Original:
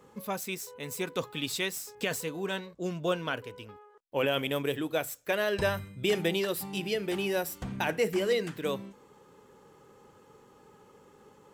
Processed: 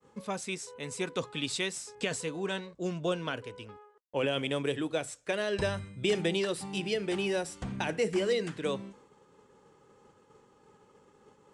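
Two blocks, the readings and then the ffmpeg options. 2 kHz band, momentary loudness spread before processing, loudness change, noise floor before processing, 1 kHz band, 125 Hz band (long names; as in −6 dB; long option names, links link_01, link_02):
−2.5 dB, 9 LU, −1.0 dB, −59 dBFS, −3.0 dB, 0.0 dB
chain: -filter_complex "[0:a]acrossover=split=500|3000[link_01][link_02][link_03];[link_02]acompressor=threshold=-33dB:ratio=6[link_04];[link_01][link_04][link_03]amix=inputs=3:normalize=0,agate=range=-33dB:threshold=-52dB:ratio=3:detection=peak,aresample=22050,aresample=44100"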